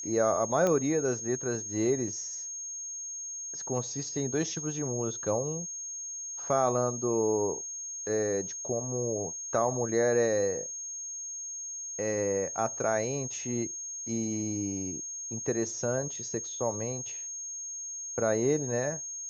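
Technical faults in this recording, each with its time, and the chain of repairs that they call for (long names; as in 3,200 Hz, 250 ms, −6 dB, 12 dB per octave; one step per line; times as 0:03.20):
whistle 6,500 Hz −36 dBFS
0:00.67: click −16 dBFS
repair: click removal
notch filter 6,500 Hz, Q 30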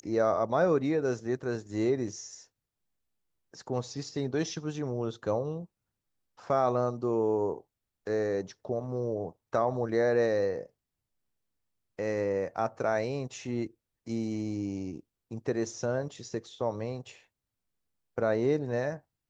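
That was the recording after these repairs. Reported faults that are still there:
none of them is left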